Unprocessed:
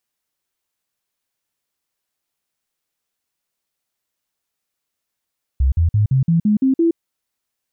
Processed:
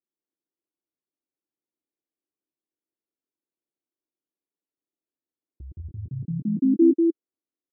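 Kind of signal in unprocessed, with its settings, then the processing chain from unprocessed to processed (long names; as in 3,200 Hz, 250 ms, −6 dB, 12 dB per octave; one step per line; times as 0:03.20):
stepped sweep 66.2 Hz up, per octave 3, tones 8, 0.12 s, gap 0.05 s −11.5 dBFS
resonant band-pass 320 Hz, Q 3.4
single-tap delay 192 ms −3.5 dB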